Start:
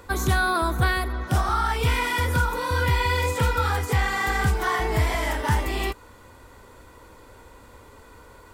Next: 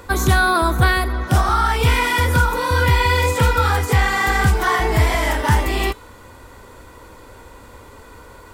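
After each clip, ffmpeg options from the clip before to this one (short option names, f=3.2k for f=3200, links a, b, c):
-af "bandreject=f=436.7:t=h:w=4,bandreject=f=873.4:t=h:w=4,bandreject=f=1.3101k:t=h:w=4,bandreject=f=1.7468k:t=h:w=4,bandreject=f=2.1835k:t=h:w=4,bandreject=f=2.6202k:t=h:w=4,bandreject=f=3.0569k:t=h:w=4,bandreject=f=3.4936k:t=h:w=4,bandreject=f=3.9303k:t=h:w=4,bandreject=f=4.367k:t=h:w=4,bandreject=f=4.8037k:t=h:w=4,bandreject=f=5.2404k:t=h:w=4,bandreject=f=5.6771k:t=h:w=4,bandreject=f=6.1138k:t=h:w=4,bandreject=f=6.5505k:t=h:w=4,bandreject=f=6.9872k:t=h:w=4,bandreject=f=7.4239k:t=h:w=4,bandreject=f=7.8606k:t=h:w=4,bandreject=f=8.2973k:t=h:w=4,bandreject=f=8.734k:t=h:w=4,bandreject=f=9.1707k:t=h:w=4,bandreject=f=9.6074k:t=h:w=4,bandreject=f=10.0441k:t=h:w=4,bandreject=f=10.4808k:t=h:w=4,bandreject=f=10.9175k:t=h:w=4,bandreject=f=11.3542k:t=h:w=4,bandreject=f=11.7909k:t=h:w=4,bandreject=f=12.2276k:t=h:w=4,bandreject=f=12.6643k:t=h:w=4,bandreject=f=13.101k:t=h:w=4,bandreject=f=13.5377k:t=h:w=4,volume=6.5dB"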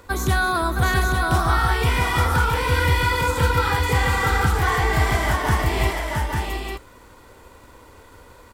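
-af "aeval=exprs='sgn(val(0))*max(abs(val(0))-0.00282,0)':c=same,aecho=1:1:249|666|851:0.15|0.596|0.562,volume=-5dB"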